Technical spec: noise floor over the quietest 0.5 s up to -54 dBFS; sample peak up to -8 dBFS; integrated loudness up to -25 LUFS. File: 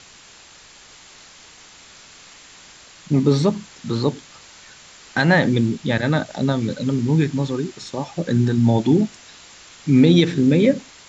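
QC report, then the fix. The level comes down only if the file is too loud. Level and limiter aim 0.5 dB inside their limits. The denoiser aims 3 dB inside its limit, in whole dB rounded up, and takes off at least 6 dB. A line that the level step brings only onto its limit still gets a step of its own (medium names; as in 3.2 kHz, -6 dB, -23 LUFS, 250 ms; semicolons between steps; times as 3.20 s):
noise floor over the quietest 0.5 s -46 dBFS: fail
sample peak -2.5 dBFS: fail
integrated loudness -19.0 LUFS: fail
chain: noise reduction 6 dB, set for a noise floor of -46 dBFS; trim -6.5 dB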